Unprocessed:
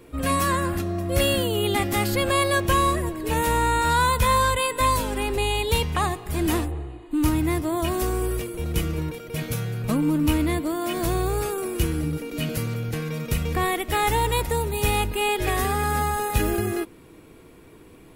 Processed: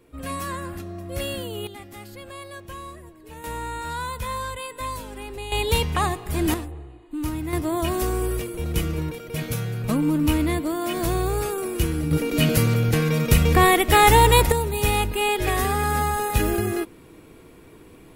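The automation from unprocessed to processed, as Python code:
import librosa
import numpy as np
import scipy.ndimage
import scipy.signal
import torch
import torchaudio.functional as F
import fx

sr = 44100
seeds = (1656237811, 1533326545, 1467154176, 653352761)

y = fx.gain(x, sr, db=fx.steps((0.0, -8.0), (1.67, -17.5), (3.44, -10.0), (5.52, 1.0), (6.54, -6.5), (7.53, 0.5), (12.11, 8.0), (14.52, 1.0)))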